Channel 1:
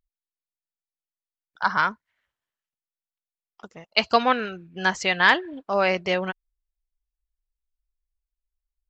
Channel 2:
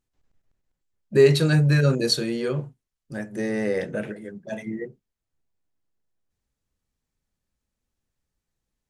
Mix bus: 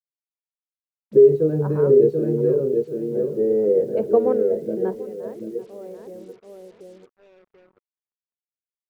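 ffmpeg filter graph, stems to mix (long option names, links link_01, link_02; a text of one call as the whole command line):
ffmpeg -i stem1.wav -i stem2.wav -filter_complex "[0:a]volume=-3dB,asplit=2[link_01][link_02];[link_02]volume=-20.5dB[link_03];[1:a]bass=frequency=250:gain=-6,treble=frequency=4000:gain=10,alimiter=limit=-13.5dB:level=0:latency=1:release=85,volume=-1.5dB,asplit=3[link_04][link_05][link_06];[link_05]volume=-3.5dB[link_07];[link_06]apad=whole_len=392132[link_08];[link_01][link_08]sidechaingate=range=-16dB:threshold=-54dB:ratio=16:detection=peak[link_09];[link_03][link_07]amix=inputs=2:normalize=0,aecho=0:1:736|1472|2208|2944:1|0.24|0.0576|0.0138[link_10];[link_09][link_04][link_10]amix=inputs=3:normalize=0,lowpass=frequency=440:width_type=q:width=4.9,acrusher=bits=8:mix=0:aa=0.5" out.wav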